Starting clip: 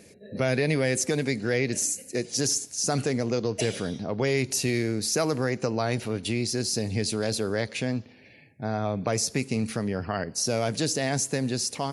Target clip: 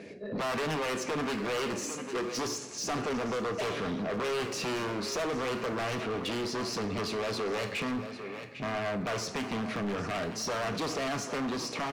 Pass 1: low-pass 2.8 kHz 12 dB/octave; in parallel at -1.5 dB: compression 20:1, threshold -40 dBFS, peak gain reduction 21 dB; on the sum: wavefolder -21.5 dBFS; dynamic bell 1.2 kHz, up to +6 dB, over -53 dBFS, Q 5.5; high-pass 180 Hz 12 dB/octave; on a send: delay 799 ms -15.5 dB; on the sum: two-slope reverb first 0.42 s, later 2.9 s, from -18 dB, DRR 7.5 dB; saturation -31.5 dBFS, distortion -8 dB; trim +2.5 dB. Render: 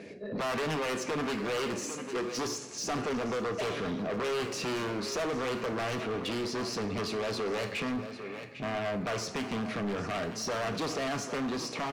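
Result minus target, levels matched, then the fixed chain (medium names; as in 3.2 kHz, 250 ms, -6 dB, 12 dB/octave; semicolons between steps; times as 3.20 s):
compression: peak gain reduction +5.5 dB
low-pass 2.8 kHz 12 dB/octave; in parallel at -1.5 dB: compression 20:1, threshold -34 dBFS, peak gain reduction 15 dB; on the sum: wavefolder -21.5 dBFS; dynamic bell 1.2 kHz, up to +6 dB, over -53 dBFS, Q 5.5; high-pass 180 Hz 12 dB/octave; on a send: delay 799 ms -15.5 dB; on the sum: two-slope reverb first 0.42 s, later 2.9 s, from -18 dB, DRR 7.5 dB; saturation -31.5 dBFS, distortion -8 dB; trim +2.5 dB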